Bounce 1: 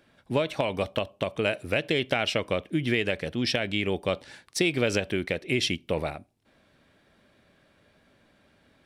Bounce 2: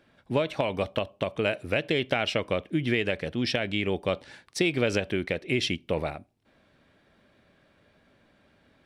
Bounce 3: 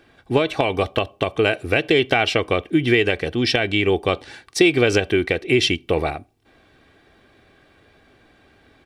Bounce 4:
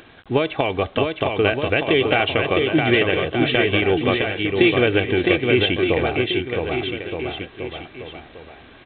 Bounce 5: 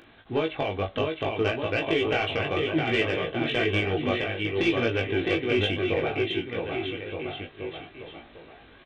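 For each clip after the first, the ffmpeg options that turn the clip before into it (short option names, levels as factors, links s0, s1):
-af "highshelf=f=6400:g=-8"
-af "aecho=1:1:2.6:0.5,volume=2.51"
-af "acompressor=mode=upward:threshold=0.0112:ratio=2.5,aresample=8000,acrusher=bits=7:mix=0:aa=0.000001,aresample=44100,aecho=1:1:660|1221|1698|2103|2448:0.631|0.398|0.251|0.158|0.1,volume=0.891"
-filter_complex "[0:a]asoftclip=type=tanh:threshold=0.447,flanger=delay=17.5:depth=2.1:speed=0.61,asplit=2[s0][s1];[s1]adelay=21,volume=0.355[s2];[s0][s2]amix=inputs=2:normalize=0,volume=0.631"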